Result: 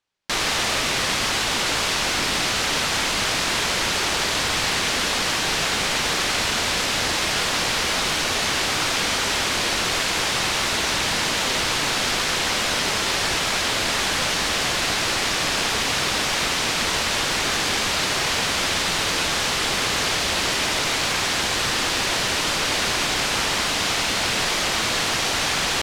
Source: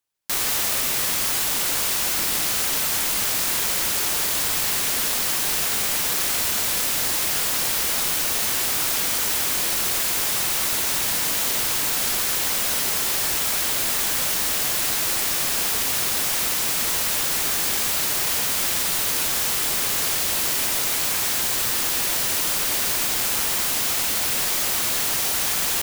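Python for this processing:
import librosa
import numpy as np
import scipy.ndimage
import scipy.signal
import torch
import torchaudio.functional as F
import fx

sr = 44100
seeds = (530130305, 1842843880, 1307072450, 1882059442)

y = scipy.signal.sosfilt(scipy.signal.butter(2, 4800.0, 'lowpass', fs=sr, output='sos'), x)
y = y * librosa.db_to_amplitude(6.5)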